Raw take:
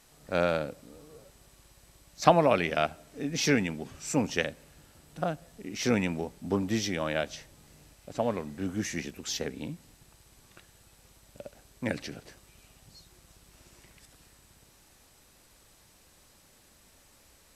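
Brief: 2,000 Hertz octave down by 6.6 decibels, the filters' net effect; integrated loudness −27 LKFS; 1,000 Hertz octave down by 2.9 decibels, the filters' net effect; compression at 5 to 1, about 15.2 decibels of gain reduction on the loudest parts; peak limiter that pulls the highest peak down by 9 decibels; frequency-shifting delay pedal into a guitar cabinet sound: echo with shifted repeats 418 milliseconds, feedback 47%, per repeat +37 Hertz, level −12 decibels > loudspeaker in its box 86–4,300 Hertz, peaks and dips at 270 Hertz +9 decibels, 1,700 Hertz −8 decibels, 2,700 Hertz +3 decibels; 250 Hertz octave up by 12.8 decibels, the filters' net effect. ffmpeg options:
ffmpeg -i in.wav -filter_complex "[0:a]equalizer=frequency=250:width_type=o:gain=9,equalizer=frequency=1000:width_type=o:gain=-3.5,equalizer=frequency=2000:width_type=o:gain=-6,acompressor=threshold=-32dB:ratio=5,alimiter=level_in=3dB:limit=-24dB:level=0:latency=1,volume=-3dB,asplit=6[link_01][link_02][link_03][link_04][link_05][link_06];[link_02]adelay=418,afreqshift=37,volume=-12dB[link_07];[link_03]adelay=836,afreqshift=74,volume=-18.6dB[link_08];[link_04]adelay=1254,afreqshift=111,volume=-25.1dB[link_09];[link_05]adelay=1672,afreqshift=148,volume=-31.7dB[link_10];[link_06]adelay=2090,afreqshift=185,volume=-38.2dB[link_11];[link_01][link_07][link_08][link_09][link_10][link_11]amix=inputs=6:normalize=0,highpass=86,equalizer=frequency=270:width_type=q:width=4:gain=9,equalizer=frequency=1700:width_type=q:width=4:gain=-8,equalizer=frequency=2700:width_type=q:width=4:gain=3,lowpass=frequency=4300:width=0.5412,lowpass=frequency=4300:width=1.3066,volume=8dB" out.wav

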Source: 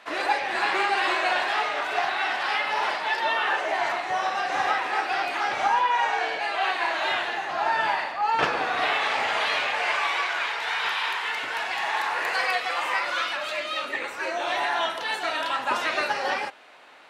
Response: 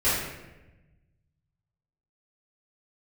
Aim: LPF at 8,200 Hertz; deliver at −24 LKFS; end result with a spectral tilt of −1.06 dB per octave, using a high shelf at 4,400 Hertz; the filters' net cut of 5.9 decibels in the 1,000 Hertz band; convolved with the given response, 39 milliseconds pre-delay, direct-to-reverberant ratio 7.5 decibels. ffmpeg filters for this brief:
-filter_complex "[0:a]lowpass=8200,equalizer=frequency=1000:width_type=o:gain=-8,highshelf=frequency=4400:gain=4,asplit=2[link_01][link_02];[1:a]atrim=start_sample=2205,adelay=39[link_03];[link_02][link_03]afir=irnorm=-1:irlink=0,volume=-22dB[link_04];[link_01][link_04]amix=inputs=2:normalize=0,volume=2.5dB"

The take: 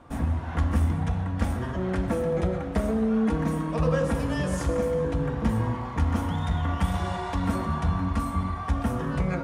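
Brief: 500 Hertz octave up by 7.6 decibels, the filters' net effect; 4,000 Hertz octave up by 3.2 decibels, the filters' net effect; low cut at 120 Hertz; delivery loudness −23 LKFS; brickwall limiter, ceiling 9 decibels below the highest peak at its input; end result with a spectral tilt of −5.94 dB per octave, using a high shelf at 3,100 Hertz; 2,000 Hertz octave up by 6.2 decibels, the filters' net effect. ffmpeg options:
ffmpeg -i in.wav -af "highpass=120,equalizer=frequency=500:width_type=o:gain=8,equalizer=frequency=2000:width_type=o:gain=8.5,highshelf=frequency=3100:gain=-8,equalizer=frequency=4000:width_type=o:gain=6.5,volume=4dB,alimiter=limit=-13dB:level=0:latency=1" out.wav

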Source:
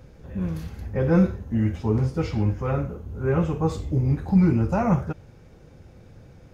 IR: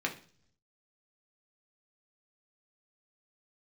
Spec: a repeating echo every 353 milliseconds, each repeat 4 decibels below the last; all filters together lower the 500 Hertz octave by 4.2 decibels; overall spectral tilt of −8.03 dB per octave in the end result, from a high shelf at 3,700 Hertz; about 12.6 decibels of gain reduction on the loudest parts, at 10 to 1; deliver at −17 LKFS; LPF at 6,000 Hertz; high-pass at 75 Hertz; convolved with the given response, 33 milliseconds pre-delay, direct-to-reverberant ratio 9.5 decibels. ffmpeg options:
-filter_complex "[0:a]highpass=75,lowpass=6000,equalizer=frequency=500:width_type=o:gain=-5,highshelf=frequency=3700:gain=-6,acompressor=threshold=-27dB:ratio=10,aecho=1:1:353|706|1059|1412|1765|2118|2471|2824|3177:0.631|0.398|0.25|0.158|0.0994|0.0626|0.0394|0.0249|0.0157,asplit=2[link_01][link_02];[1:a]atrim=start_sample=2205,adelay=33[link_03];[link_02][link_03]afir=irnorm=-1:irlink=0,volume=-15.5dB[link_04];[link_01][link_04]amix=inputs=2:normalize=0,volume=14dB"

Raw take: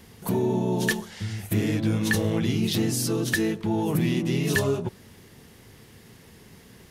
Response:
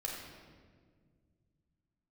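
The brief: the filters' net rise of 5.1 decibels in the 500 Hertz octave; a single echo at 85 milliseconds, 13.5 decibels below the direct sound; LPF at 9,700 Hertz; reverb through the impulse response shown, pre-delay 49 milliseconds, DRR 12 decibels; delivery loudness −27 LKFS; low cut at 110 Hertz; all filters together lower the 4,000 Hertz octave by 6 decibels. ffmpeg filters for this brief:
-filter_complex "[0:a]highpass=110,lowpass=9700,equalizer=frequency=500:width_type=o:gain=7,equalizer=frequency=4000:width_type=o:gain=-8,aecho=1:1:85:0.211,asplit=2[link_01][link_02];[1:a]atrim=start_sample=2205,adelay=49[link_03];[link_02][link_03]afir=irnorm=-1:irlink=0,volume=-13.5dB[link_04];[link_01][link_04]amix=inputs=2:normalize=0,volume=-3.5dB"

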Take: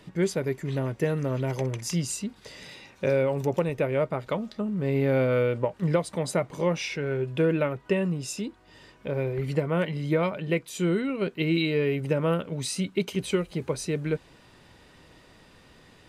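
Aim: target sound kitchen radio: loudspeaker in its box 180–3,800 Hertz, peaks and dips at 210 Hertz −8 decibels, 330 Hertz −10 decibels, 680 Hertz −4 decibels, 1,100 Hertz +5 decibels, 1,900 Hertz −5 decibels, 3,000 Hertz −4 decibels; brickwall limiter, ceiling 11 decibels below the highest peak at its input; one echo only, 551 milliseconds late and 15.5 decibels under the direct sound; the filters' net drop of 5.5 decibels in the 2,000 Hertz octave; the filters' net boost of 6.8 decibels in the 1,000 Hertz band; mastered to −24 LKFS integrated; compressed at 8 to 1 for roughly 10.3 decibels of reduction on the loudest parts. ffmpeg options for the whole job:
ffmpeg -i in.wav -af "equalizer=frequency=1000:width_type=o:gain=9,equalizer=frequency=2000:width_type=o:gain=-8.5,acompressor=threshold=-29dB:ratio=8,alimiter=level_in=5.5dB:limit=-24dB:level=0:latency=1,volume=-5.5dB,highpass=180,equalizer=frequency=210:width_type=q:width=4:gain=-8,equalizer=frequency=330:width_type=q:width=4:gain=-10,equalizer=frequency=680:width_type=q:width=4:gain=-4,equalizer=frequency=1100:width_type=q:width=4:gain=5,equalizer=frequency=1900:width_type=q:width=4:gain=-5,equalizer=frequency=3000:width_type=q:width=4:gain=-4,lowpass=frequency=3800:width=0.5412,lowpass=frequency=3800:width=1.3066,aecho=1:1:551:0.168,volume=18.5dB" out.wav

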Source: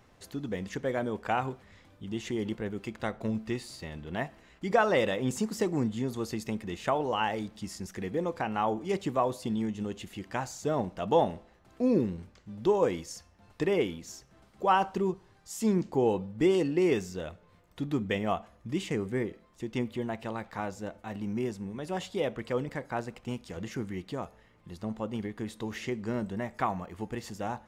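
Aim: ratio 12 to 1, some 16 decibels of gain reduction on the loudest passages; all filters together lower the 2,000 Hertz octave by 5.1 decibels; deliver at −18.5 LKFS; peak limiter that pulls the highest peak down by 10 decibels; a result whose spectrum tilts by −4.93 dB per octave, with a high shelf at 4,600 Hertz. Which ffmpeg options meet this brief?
ffmpeg -i in.wav -af "equalizer=frequency=2000:width_type=o:gain=-8,highshelf=frequency=4600:gain=6,acompressor=threshold=-36dB:ratio=12,volume=25.5dB,alimiter=limit=-8.5dB:level=0:latency=1" out.wav

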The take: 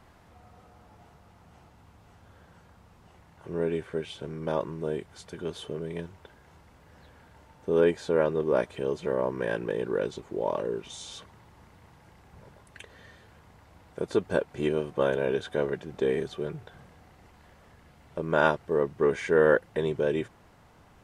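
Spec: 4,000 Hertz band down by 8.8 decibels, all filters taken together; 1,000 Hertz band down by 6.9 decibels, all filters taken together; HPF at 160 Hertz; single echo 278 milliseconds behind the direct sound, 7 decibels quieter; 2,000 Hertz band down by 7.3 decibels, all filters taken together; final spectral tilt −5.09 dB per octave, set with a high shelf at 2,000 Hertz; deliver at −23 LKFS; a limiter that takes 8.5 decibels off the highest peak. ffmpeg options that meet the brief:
ffmpeg -i in.wav -af "highpass=160,equalizer=frequency=1000:width_type=o:gain=-6.5,highshelf=frequency=2000:gain=-4,equalizer=frequency=2000:width_type=o:gain=-4,equalizer=frequency=4000:width_type=o:gain=-5.5,alimiter=limit=-20.5dB:level=0:latency=1,aecho=1:1:278:0.447,volume=10dB" out.wav

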